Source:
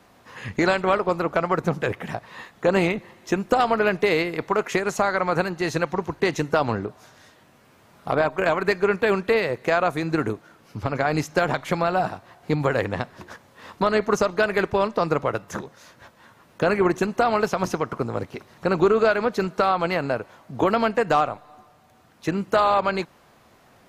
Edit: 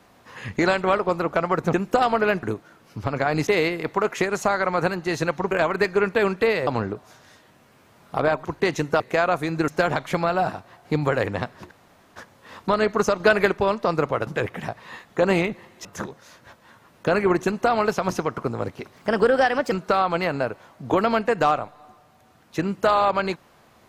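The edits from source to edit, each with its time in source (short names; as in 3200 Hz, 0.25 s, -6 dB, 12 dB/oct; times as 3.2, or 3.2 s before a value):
1.73–3.31 move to 15.4
6.05–6.6 swap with 8.38–9.54
10.22–11.26 move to 4.01
13.29 insert room tone 0.45 s
14.33–14.59 gain +4 dB
18.51–19.41 speed 119%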